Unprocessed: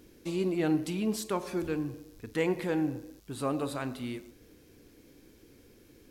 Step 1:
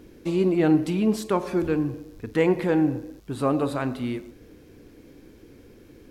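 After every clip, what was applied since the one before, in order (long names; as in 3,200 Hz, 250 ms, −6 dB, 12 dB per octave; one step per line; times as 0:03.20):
high-shelf EQ 3,100 Hz −10 dB
level +8.5 dB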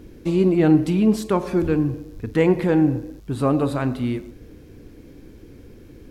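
low-shelf EQ 180 Hz +9 dB
level +1.5 dB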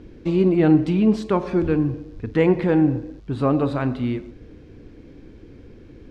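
low-pass filter 4,300 Hz 12 dB per octave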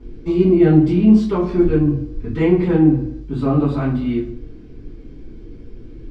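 convolution reverb RT60 0.35 s, pre-delay 3 ms, DRR −11 dB
level −13.5 dB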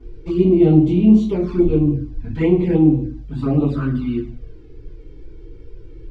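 flanger swept by the level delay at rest 2.8 ms, full sweep at −11.5 dBFS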